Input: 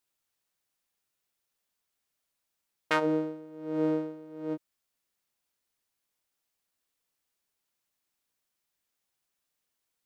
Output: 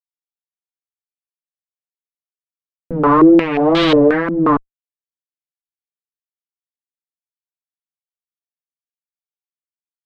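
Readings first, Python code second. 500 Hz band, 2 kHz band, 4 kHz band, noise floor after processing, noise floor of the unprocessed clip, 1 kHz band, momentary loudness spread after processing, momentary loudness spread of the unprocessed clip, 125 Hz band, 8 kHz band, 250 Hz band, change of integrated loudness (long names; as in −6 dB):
+18.0 dB, +13.5 dB, +20.5 dB, below −85 dBFS, −83 dBFS, +20.0 dB, 9 LU, 13 LU, +18.5 dB, can't be measured, +19.5 dB, +19.0 dB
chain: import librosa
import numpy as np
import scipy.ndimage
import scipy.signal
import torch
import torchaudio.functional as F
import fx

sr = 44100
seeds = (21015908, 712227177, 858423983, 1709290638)

y = fx.fuzz(x, sr, gain_db=48.0, gate_db=-49.0)
y = fx.wow_flutter(y, sr, seeds[0], rate_hz=2.1, depth_cents=130.0)
y = fx.filter_held_lowpass(y, sr, hz=5.6, low_hz=250.0, high_hz=3600.0)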